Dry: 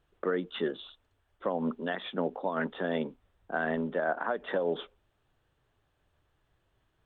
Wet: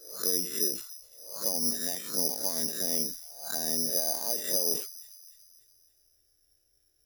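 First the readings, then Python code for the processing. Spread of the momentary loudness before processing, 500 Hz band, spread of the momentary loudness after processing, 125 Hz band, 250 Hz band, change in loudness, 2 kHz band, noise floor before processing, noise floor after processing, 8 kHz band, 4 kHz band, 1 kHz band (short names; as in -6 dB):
7 LU, -7.0 dB, 15 LU, -5.5 dB, -6.0 dB, +5.0 dB, -12.0 dB, -75 dBFS, -71 dBFS, n/a, +11.0 dB, -10.0 dB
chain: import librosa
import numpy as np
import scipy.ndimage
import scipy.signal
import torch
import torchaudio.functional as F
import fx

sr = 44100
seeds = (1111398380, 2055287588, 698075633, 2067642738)

p1 = fx.spec_swells(x, sr, rise_s=0.58)
p2 = fx.env_phaser(p1, sr, low_hz=170.0, high_hz=1400.0, full_db=-27.0)
p3 = (np.kron(scipy.signal.resample_poly(p2, 1, 8), np.eye(8)[0]) * 8)[:len(p2)]
p4 = p3 + fx.echo_wet_highpass(p3, sr, ms=287, feedback_pct=50, hz=2300.0, wet_db=-18.0, dry=0)
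p5 = fx.sustainer(p4, sr, db_per_s=100.0)
y = F.gain(torch.from_numpy(p5), -7.0).numpy()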